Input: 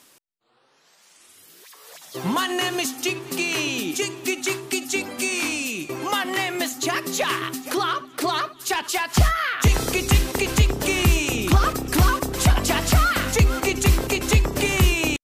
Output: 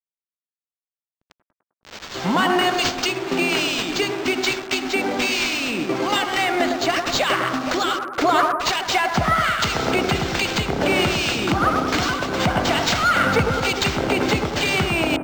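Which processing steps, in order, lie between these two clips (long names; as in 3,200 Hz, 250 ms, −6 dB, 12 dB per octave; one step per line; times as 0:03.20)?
in parallel at −2 dB: downward compressor, threshold −26 dBFS, peak gain reduction 13.5 dB
on the sum: two-band tremolo in antiphase 1.2 Hz, depth 70%, crossover 2,500 Hz
brickwall limiter −13 dBFS, peak gain reduction 6.5 dB
comb filter 1.4 ms, depth 30%
bit reduction 6 bits
high-pass filter 180 Hz 12 dB per octave
on a send: bucket-brigade delay 103 ms, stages 1,024, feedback 57%, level −4 dB
on the sum: linearly interpolated sample-rate reduction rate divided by 4×
level +5 dB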